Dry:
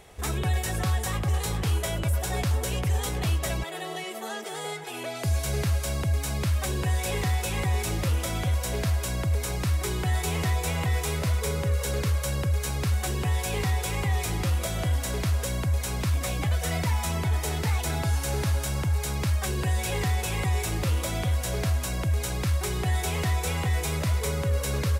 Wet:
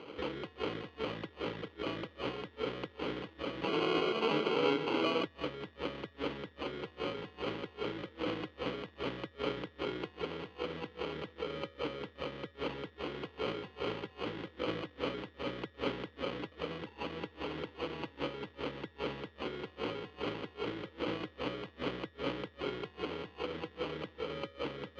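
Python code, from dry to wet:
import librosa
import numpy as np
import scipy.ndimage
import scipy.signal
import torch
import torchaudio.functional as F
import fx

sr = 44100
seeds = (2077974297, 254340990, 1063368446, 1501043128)

y = fx.over_compress(x, sr, threshold_db=-32.0, ratio=-0.5)
y = fx.sample_hold(y, sr, seeds[0], rate_hz=1800.0, jitter_pct=0)
y = fx.cabinet(y, sr, low_hz=190.0, low_slope=12, high_hz=4100.0, hz=(310.0, 480.0, 690.0, 1400.0, 2000.0, 3200.0), db=(8, 9, -8, 3, 6, 9))
y = y * librosa.db_to_amplitude(-5.5)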